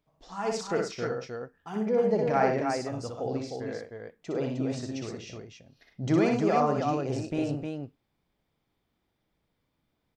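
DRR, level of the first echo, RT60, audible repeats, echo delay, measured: no reverb, -3.5 dB, no reverb, 3, 61 ms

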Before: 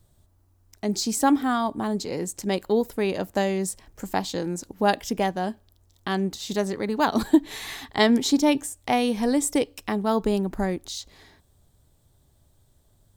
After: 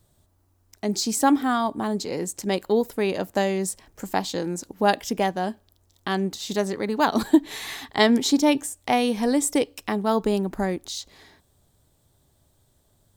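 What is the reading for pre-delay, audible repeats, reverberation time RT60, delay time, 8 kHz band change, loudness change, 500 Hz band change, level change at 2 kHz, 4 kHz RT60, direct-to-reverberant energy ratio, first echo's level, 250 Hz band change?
no reverb, no echo, no reverb, no echo, +1.5 dB, +1.0 dB, +1.0 dB, +1.5 dB, no reverb, no reverb, no echo, +0.5 dB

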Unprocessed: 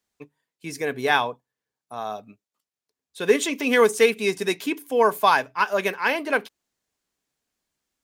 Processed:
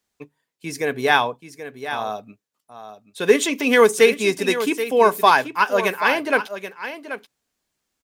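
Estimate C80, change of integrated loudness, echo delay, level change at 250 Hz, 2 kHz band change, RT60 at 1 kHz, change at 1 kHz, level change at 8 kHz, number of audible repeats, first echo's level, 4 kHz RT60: no reverb, +3.5 dB, 781 ms, +3.5 dB, +4.0 dB, no reverb, +4.0 dB, +4.0 dB, 1, -11.5 dB, no reverb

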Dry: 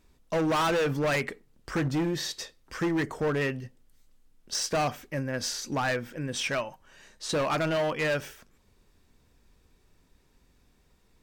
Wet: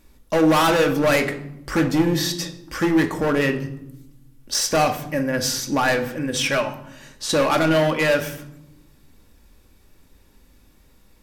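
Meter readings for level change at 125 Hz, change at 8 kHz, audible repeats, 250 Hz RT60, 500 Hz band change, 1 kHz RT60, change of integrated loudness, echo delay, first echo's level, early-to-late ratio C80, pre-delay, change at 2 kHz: +6.5 dB, +9.0 dB, no echo, 1.5 s, +8.5 dB, 0.80 s, +8.5 dB, no echo, no echo, 14.5 dB, 4 ms, +8.0 dB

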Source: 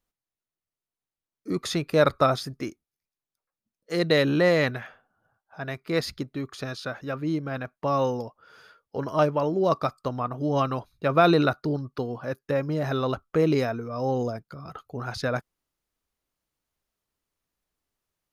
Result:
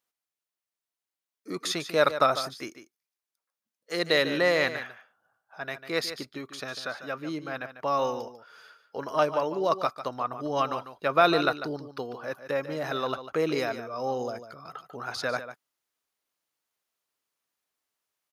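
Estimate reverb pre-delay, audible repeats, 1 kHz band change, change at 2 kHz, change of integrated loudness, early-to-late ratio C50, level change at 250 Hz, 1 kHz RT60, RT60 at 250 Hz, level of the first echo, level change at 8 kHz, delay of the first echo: no reverb, 1, 0.0 dB, +1.0 dB, -2.5 dB, no reverb, -7.0 dB, no reverb, no reverb, -11.5 dB, no reading, 147 ms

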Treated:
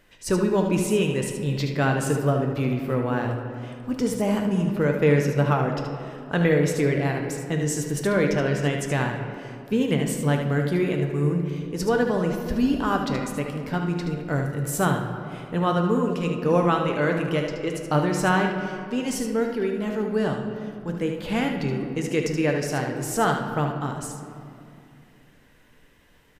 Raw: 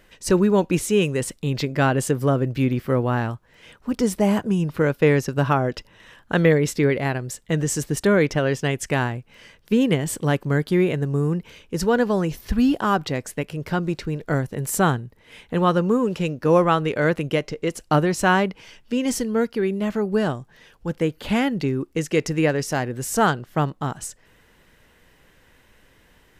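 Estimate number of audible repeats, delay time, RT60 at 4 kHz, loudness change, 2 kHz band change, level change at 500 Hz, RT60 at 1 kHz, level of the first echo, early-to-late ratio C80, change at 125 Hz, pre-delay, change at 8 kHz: 1, 75 ms, 1.4 s, -2.5 dB, -2.5 dB, -2.0 dB, 2.3 s, -7.5 dB, 7.0 dB, -1.0 dB, 7 ms, -3.0 dB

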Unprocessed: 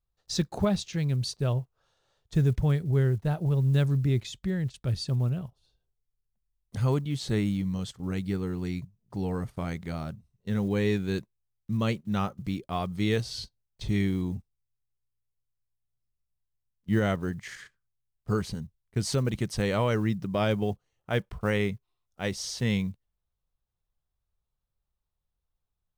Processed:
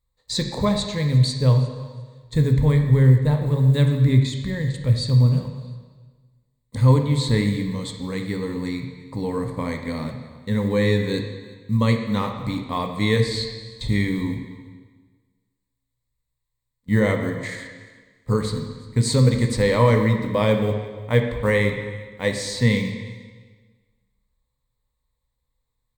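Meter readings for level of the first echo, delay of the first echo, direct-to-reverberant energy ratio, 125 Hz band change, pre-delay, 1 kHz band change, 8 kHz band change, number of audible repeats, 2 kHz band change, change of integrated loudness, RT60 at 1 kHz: -22.5 dB, 352 ms, 4.0 dB, +9.0 dB, 5 ms, +7.0 dB, +6.0 dB, 1, +8.5 dB, +8.0 dB, 1.4 s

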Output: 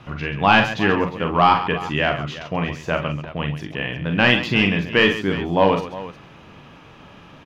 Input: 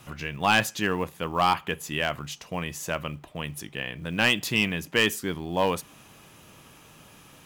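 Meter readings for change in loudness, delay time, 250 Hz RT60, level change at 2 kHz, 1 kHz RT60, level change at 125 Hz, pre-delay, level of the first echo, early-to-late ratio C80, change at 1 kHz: +7.0 dB, 41 ms, no reverb, +6.5 dB, no reverb, +9.5 dB, no reverb, -6.5 dB, no reverb, +8.0 dB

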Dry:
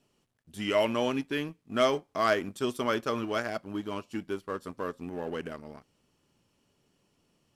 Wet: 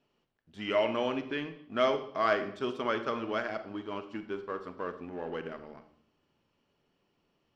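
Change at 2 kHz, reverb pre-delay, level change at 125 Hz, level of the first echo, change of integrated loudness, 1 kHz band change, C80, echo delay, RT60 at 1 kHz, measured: -1.5 dB, 34 ms, -6.0 dB, no echo, -2.0 dB, -1.0 dB, 14.0 dB, no echo, 0.60 s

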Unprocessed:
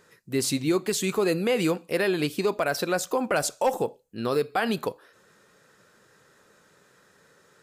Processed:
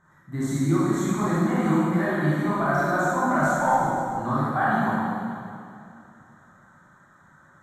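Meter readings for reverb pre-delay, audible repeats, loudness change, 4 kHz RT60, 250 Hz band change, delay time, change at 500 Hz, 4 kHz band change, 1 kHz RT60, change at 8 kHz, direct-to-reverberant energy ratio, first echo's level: 20 ms, no echo, +2.5 dB, 2.2 s, +5.0 dB, no echo, -2.5 dB, -11.5 dB, 2.4 s, -6.5 dB, -9.5 dB, no echo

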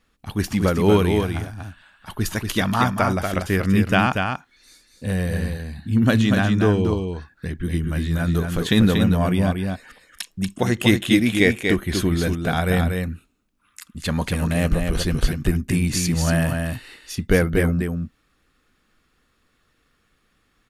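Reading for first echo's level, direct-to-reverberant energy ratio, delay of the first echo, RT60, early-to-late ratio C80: -5.0 dB, no reverb, 237 ms, no reverb, no reverb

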